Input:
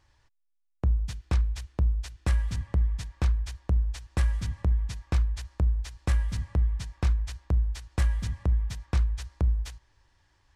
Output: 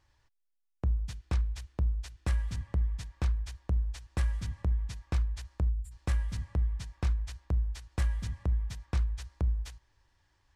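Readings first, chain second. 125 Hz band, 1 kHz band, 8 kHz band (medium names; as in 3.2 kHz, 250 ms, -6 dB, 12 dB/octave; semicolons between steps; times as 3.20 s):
-4.5 dB, -4.5 dB, -4.5 dB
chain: time-frequency box 5.69–5.91 s, 230–6900 Hz -23 dB; trim -4.5 dB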